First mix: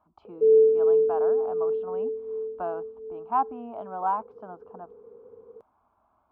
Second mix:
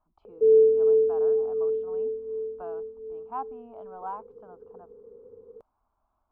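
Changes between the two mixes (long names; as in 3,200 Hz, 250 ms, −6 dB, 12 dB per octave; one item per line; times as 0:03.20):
speech −9.5 dB
master: remove high-pass filter 95 Hz 12 dB per octave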